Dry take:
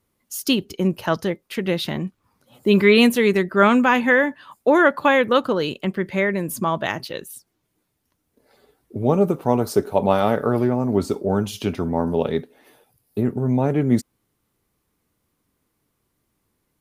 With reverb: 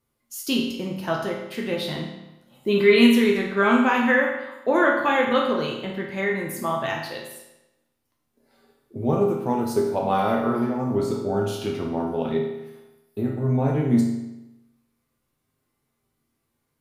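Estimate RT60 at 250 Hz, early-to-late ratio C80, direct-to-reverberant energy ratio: 1.0 s, 6.0 dB, -2.0 dB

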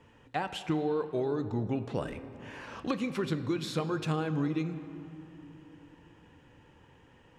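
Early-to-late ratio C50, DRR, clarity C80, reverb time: 11.5 dB, 10.0 dB, 12.5 dB, 2.9 s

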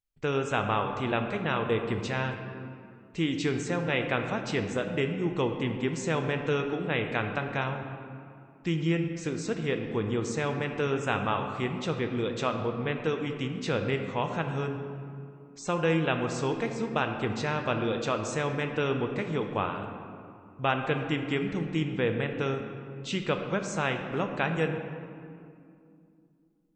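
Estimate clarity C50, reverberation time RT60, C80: 6.0 dB, 2.5 s, 7.0 dB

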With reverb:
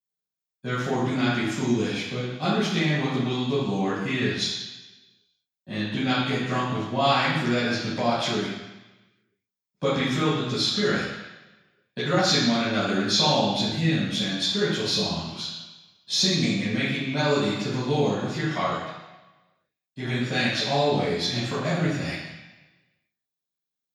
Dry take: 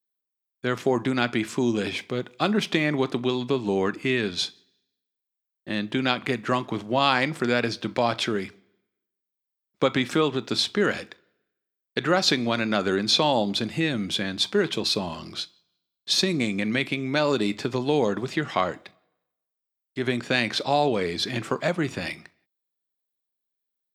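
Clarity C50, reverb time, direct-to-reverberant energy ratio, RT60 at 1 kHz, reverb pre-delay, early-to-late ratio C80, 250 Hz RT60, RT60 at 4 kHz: -0.5 dB, 1.1 s, -12.5 dB, 1.1 s, 3 ms, 2.5 dB, 1.0 s, 1.1 s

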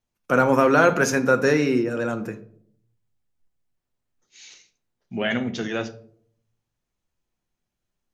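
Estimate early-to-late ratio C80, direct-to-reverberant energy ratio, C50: 19.0 dB, 7.5 dB, 15.5 dB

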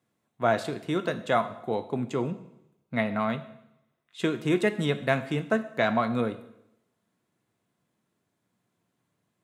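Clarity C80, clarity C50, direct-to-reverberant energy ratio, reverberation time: 16.0 dB, 14.0 dB, 10.0 dB, 0.80 s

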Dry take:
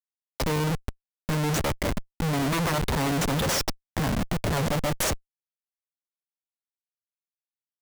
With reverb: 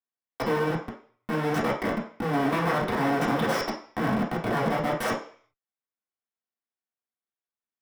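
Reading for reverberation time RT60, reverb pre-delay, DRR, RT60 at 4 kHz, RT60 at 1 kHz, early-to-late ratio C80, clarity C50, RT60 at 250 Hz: 0.45 s, 3 ms, -4.5 dB, 0.55 s, 0.50 s, 11.5 dB, 7.0 dB, 0.40 s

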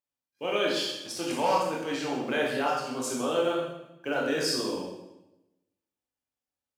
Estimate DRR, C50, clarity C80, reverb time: -3.0 dB, 2.0 dB, 5.0 dB, 0.95 s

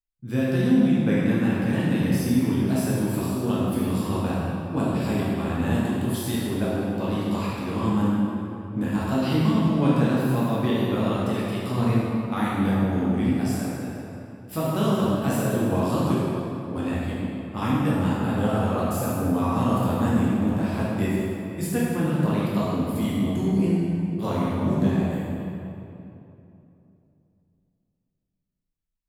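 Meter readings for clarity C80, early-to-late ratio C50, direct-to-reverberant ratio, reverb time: -1.5 dB, -3.5 dB, -8.0 dB, 2.9 s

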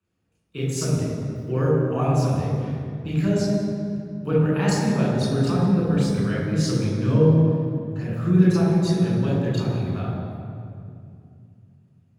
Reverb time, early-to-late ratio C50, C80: 2.5 s, -1.0 dB, 1.0 dB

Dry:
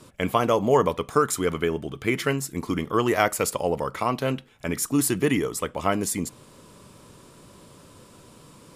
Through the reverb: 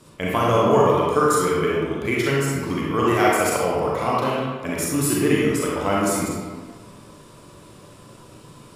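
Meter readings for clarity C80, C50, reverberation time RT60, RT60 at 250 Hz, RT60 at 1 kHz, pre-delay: 0.5 dB, -2.5 dB, 1.5 s, 1.4 s, 1.6 s, 32 ms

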